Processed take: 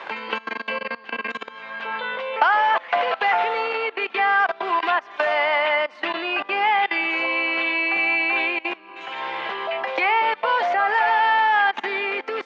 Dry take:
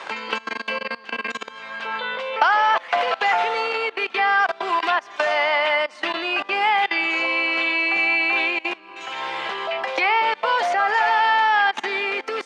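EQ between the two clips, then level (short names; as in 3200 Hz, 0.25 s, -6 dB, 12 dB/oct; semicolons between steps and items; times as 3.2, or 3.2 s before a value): BPF 120–3200 Hz; notch 1300 Hz, Q 26; 0.0 dB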